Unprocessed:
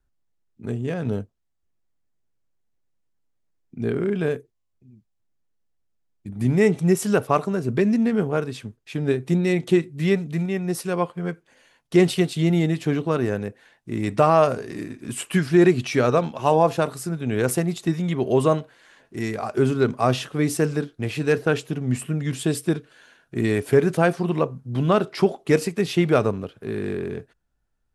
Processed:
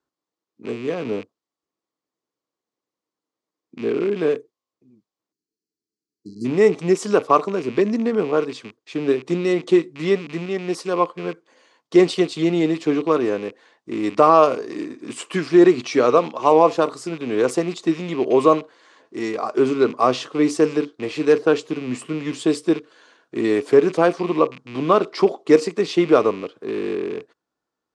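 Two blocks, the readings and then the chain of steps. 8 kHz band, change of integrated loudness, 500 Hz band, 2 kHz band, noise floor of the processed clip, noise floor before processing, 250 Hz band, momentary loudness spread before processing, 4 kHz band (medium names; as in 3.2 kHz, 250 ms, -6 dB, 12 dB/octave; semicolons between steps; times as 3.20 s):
-3.0 dB, +3.0 dB, +4.0 dB, -0.5 dB, under -85 dBFS, -72 dBFS, +1.5 dB, 12 LU, +2.0 dB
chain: rattle on loud lows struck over -33 dBFS, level -28 dBFS; cabinet simulation 270–7600 Hz, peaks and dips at 310 Hz +7 dB, 470 Hz +5 dB, 1.1 kHz +8 dB, 1.6 kHz -4 dB, 2.6 kHz -3 dB, 4.6 kHz +3 dB; spectral selection erased 5.32–6.45 s, 460–4000 Hz; trim +1 dB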